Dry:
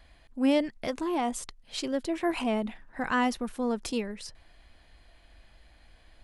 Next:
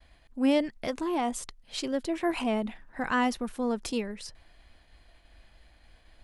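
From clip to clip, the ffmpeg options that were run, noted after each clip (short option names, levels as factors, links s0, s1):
-af "agate=range=0.0224:threshold=0.002:ratio=3:detection=peak"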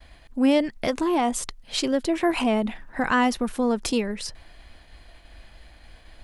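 -af "acompressor=threshold=0.0251:ratio=1.5,volume=2.82"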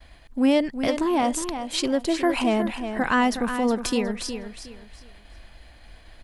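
-af "aecho=1:1:364|728|1092:0.355|0.0958|0.0259"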